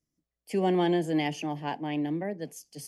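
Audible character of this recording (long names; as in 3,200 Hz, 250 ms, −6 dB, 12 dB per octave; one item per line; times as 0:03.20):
background noise floor −89 dBFS
spectral slope −5.5 dB per octave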